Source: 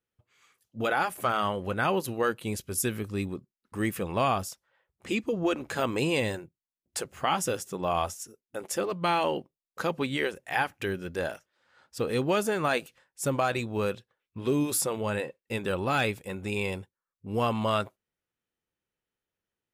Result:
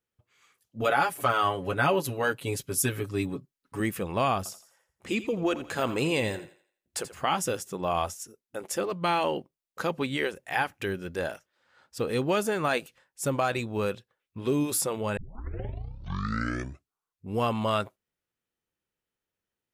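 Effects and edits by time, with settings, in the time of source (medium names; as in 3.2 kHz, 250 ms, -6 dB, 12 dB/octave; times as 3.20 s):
0.81–3.80 s: comb 7.1 ms, depth 87%
4.37–7.15 s: thinning echo 84 ms, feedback 37%, high-pass 370 Hz, level -13 dB
15.17 s: tape start 2.18 s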